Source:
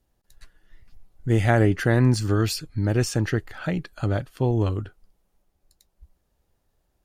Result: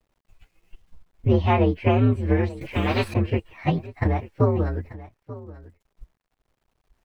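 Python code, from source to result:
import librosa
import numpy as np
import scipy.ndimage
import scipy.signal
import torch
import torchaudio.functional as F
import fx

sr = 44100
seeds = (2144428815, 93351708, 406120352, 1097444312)

p1 = fx.partial_stretch(x, sr, pct=121)
p2 = scipy.signal.sosfilt(scipy.signal.butter(2, 2300.0, 'lowpass', fs=sr, output='sos'), p1)
p3 = fx.low_shelf(p2, sr, hz=260.0, db=-4.0)
p4 = fx.level_steps(p3, sr, step_db=17)
p5 = p3 + (p4 * 10.0 ** (0.0 / 20.0))
p6 = fx.transient(p5, sr, attack_db=8, sustain_db=-4)
p7 = fx.quant_dither(p6, sr, seeds[0], bits=12, dither='none')
p8 = p7 + fx.echo_single(p7, sr, ms=887, db=-17.5, dry=0)
y = fx.spectral_comp(p8, sr, ratio=2.0, at=(2.61, 3.14))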